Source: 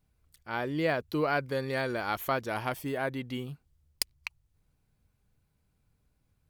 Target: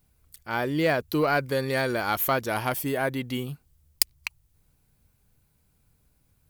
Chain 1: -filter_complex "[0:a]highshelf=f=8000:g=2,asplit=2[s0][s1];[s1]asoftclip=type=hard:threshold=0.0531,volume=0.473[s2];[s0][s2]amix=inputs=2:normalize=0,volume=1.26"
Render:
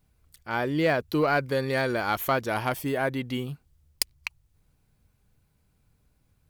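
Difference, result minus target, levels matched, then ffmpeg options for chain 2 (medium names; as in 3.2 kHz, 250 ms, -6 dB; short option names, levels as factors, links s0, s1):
8 kHz band -4.0 dB
-filter_complex "[0:a]highshelf=f=8000:g=11.5,asplit=2[s0][s1];[s1]asoftclip=type=hard:threshold=0.0531,volume=0.473[s2];[s0][s2]amix=inputs=2:normalize=0,volume=1.26"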